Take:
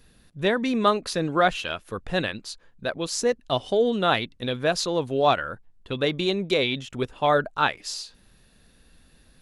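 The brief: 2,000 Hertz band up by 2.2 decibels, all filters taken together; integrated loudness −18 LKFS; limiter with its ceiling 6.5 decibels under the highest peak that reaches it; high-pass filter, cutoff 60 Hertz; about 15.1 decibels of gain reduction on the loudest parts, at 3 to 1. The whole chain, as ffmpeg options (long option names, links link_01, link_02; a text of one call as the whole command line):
ffmpeg -i in.wav -af "highpass=60,equalizer=frequency=2000:width_type=o:gain=3,acompressor=threshold=-36dB:ratio=3,volume=20.5dB,alimiter=limit=-6.5dB:level=0:latency=1" out.wav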